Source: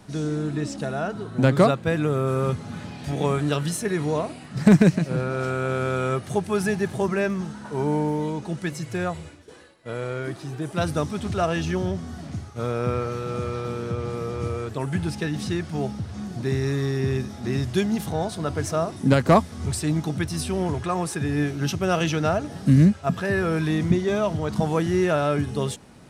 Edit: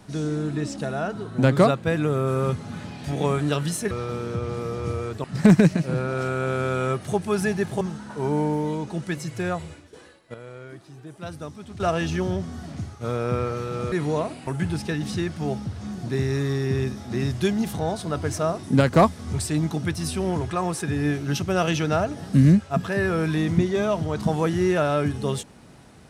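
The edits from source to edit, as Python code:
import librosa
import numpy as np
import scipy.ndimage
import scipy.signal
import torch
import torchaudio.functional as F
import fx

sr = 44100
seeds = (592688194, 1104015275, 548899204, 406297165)

y = fx.edit(x, sr, fx.swap(start_s=3.91, length_s=0.55, other_s=13.47, other_length_s=1.33),
    fx.cut(start_s=7.03, length_s=0.33),
    fx.clip_gain(start_s=9.89, length_s=1.46, db=-11.0), tone=tone)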